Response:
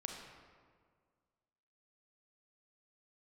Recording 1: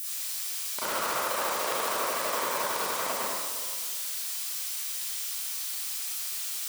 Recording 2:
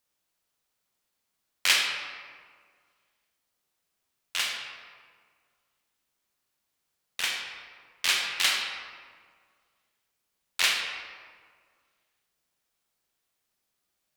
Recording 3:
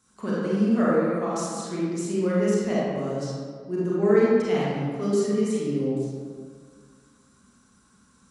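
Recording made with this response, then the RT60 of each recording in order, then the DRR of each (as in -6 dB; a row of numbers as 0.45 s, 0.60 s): 2; 1.8 s, 1.8 s, 1.8 s; -12.5 dB, 1.5 dB, -8.0 dB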